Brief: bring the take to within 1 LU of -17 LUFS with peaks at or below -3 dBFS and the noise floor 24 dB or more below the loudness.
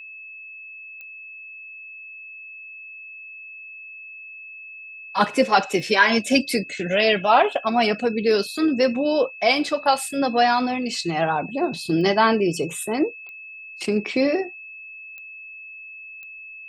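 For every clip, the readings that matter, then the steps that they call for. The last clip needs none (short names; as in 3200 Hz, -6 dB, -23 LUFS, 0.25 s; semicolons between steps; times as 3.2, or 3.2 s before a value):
clicks 6; steady tone 2600 Hz; tone level -37 dBFS; loudness -21.0 LUFS; peak -2.5 dBFS; loudness target -17.0 LUFS
-> de-click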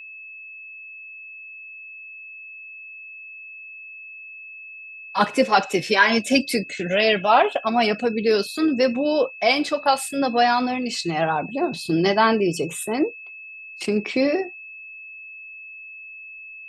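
clicks 0; steady tone 2600 Hz; tone level -37 dBFS
-> notch 2600 Hz, Q 30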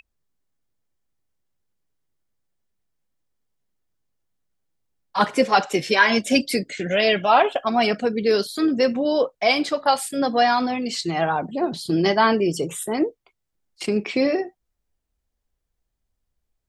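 steady tone none; loudness -21.0 LUFS; peak -2.5 dBFS; loudness target -17.0 LUFS
-> gain +4 dB; limiter -3 dBFS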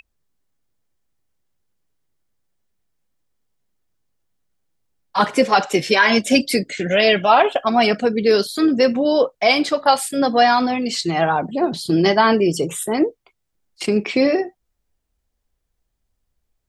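loudness -17.5 LUFS; peak -3.0 dBFS; noise floor -75 dBFS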